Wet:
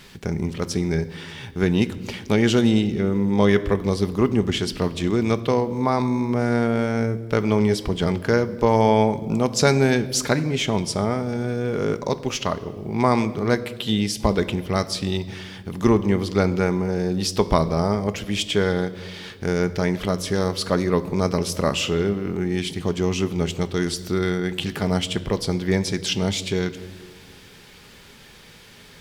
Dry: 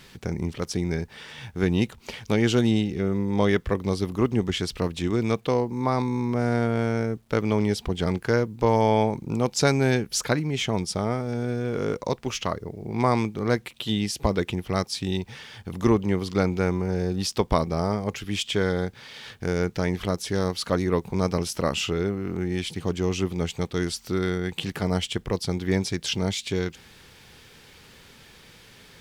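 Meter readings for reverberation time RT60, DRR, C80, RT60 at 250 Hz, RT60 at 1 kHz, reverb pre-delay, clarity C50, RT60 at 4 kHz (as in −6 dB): 1.6 s, 11.0 dB, 17.5 dB, 2.6 s, 1.3 s, 5 ms, 16.0 dB, 1.2 s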